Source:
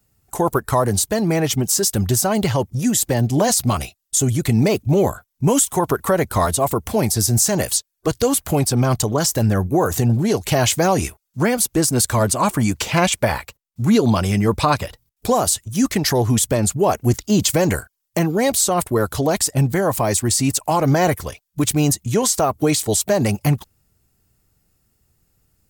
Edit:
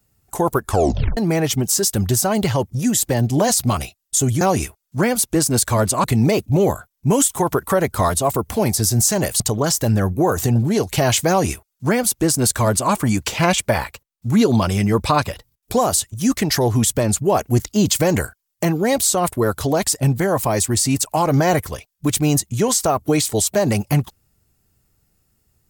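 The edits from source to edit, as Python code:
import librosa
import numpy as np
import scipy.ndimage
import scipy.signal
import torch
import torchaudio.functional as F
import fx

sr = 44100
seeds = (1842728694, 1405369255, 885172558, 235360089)

y = fx.edit(x, sr, fx.tape_stop(start_s=0.63, length_s=0.54),
    fx.cut(start_s=7.77, length_s=1.17),
    fx.duplicate(start_s=10.83, length_s=1.63, to_s=4.41), tone=tone)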